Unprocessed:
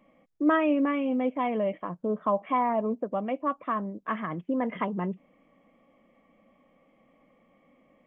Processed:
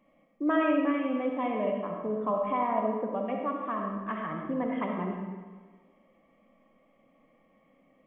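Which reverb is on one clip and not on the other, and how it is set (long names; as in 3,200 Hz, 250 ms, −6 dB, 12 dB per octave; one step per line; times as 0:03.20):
comb and all-pass reverb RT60 1.4 s, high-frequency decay 0.7×, pre-delay 20 ms, DRR 0.5 dB
level −4.5 dB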